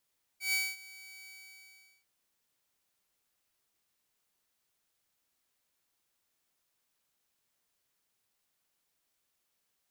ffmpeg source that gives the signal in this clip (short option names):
-f lavfi -i "aevalsrc='0.0596*(2*mod(2280*t,1)-1)':d=1.649:s=44100,afade=t=in:d=0.13,afade=t=out:st=0.13:d=0.23:silence=0.0841,afade=t=out:st=0.87:d=0.779"